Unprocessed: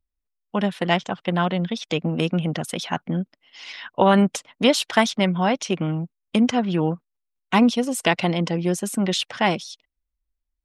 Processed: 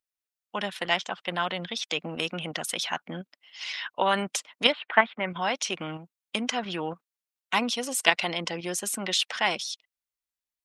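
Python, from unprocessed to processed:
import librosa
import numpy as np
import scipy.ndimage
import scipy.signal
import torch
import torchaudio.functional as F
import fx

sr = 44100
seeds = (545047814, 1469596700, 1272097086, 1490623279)

p1 = fx.highpass(x, sr, hz=1500.0, slope=6)
p2 = fx.level_steps(p1, sr, step_db=21)
p3 = p1 + F.gain(torch.from_numpy(p2), 1.5).numpy()
p4 = fx.cheby2_lowpass(p3, sr, hz=5700.0, order=4, stop_db=50, at=(4.72, 5.3))
y = F.gain(torch.from_numpy(p4), -1.0).numpy()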